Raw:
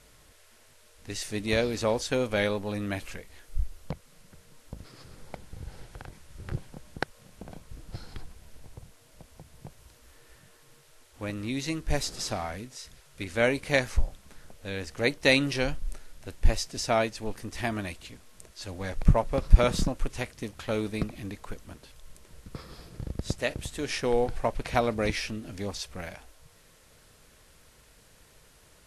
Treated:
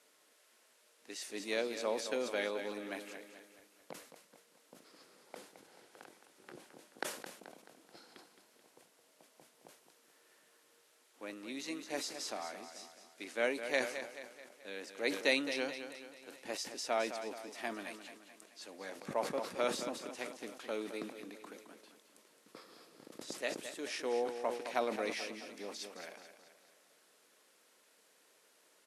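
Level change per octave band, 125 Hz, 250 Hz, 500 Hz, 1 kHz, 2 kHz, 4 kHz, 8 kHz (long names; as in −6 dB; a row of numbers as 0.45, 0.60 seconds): −29.5, −11.5, −8.0, −8.0, −8.0, −8.0, −7.0 decibels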